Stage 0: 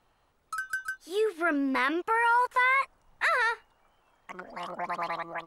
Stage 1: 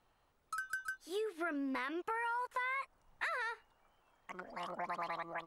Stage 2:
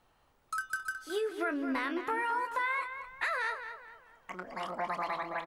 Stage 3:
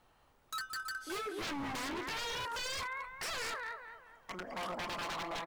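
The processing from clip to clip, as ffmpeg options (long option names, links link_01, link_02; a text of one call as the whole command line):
ffmpeg -i in.wav -af "acompressor=threshold=-30dB:ratio=6,volume=-5.5dB" out.wav
ffmpeg -i in.wav -filter_complex "[0:a]asplit=2[link_01][link_02];[link_02]adelay=27,volume=-11dB[link_03];[link_01][link_03]amix=inputs=2:normalize=0,asplit=2[link_04][link_05];[link_05]adelay=216,lowpass=frequency=3900:poles=1,volume=-9dB,asplit=2[link_06][link_07];[link_07]adelay=216,lowpass=frequency=3900:poles=1,volume=0.39,asplit=2[link_08][link_09];[link_09]adelay=216,lowpass=frequency=3900:poles=1,volume=0.39,asplit=2[link_10][link_11];[link_11]adelay=216,lowpass=frequency=3900:poles=1,volume=0.39[link_12];[link_06][link_08][link_10][link_12]amix=inputs=4:normalize=0[link_13];[link_04][link_13]amix=inputs=2:normalize=0,volume=5dB" out.wav
ffmpeg -i in.wav -af "aeval=exprs='0.0178*(abs(mod(val(0)/0.0178+3,4)-2)-1)':channel_layout=same,volume=1dB" out.wav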